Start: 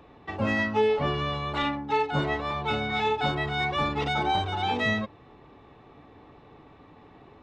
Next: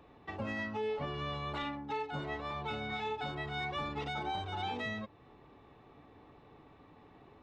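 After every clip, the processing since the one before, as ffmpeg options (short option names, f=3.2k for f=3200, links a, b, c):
-af "alimiter=limit=-22dB:level=0:latency=1:release=324,volume=-6.5dB"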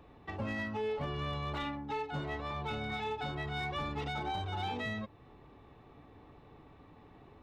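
-af "lowshelf=f=120:g=7.5,volume=30dB,asoftclip=hard,volume=-30dB"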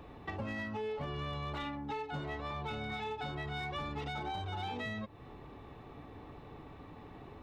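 -af "acompressor=threshold=-45dB:ratio=3,volume=6dB"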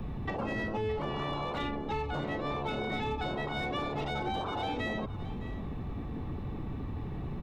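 -filter_complex "[0:a]acrossover=split=120|840|3100[a][b][c][d];[a]aeval=exprs='0.0119*sin(PI/2*10*val(0)/0.0119)':c=same[e];[e][b][c][d]amix=inputs=4:normalize=0,aecho=1:1:615:0.168,volume=4dB"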